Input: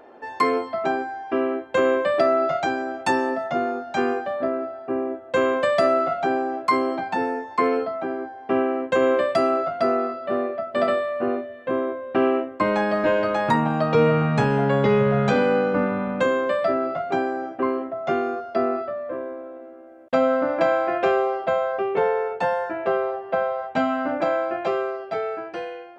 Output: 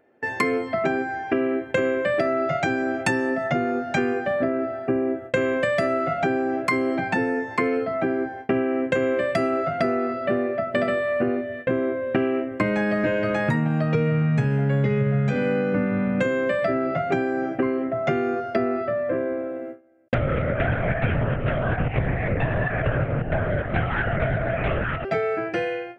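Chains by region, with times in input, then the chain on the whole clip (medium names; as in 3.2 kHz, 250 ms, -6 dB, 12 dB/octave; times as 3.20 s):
20.14–25.05 s: chunks repeated in reverse 134 ms, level -4 dB + high-pass 690 Hz 6 dB/octave + LPC vocoder at 8 kHz whisper
whole clip: gate with hold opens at -31 dBFS; ten-band graphic EQ 125 Hz +11 dB, 1 kHz -11 dB, 2 kHz +7 dB, 4 kHz -7 dB; compression 6:1, threshold -29 dBFS; trim +9 dB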